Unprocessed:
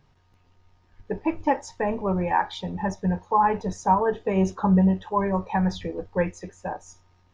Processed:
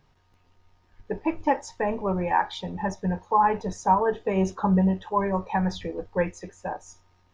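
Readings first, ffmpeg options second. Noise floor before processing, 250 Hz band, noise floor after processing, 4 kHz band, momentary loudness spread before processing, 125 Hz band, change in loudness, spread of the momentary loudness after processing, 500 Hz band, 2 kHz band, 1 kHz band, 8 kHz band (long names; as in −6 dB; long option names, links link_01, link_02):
−62 dBFS, −2.5 dB, −64 dBFS, 0.0 dB, 12 LU, −2.5 dB, −1.0 dB, 12 LU, −0.5 dB, 0.0 dB, 0.0 dB, can't be measured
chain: -af "equalizer=frequency=110:width=0.57:gain=-3.5"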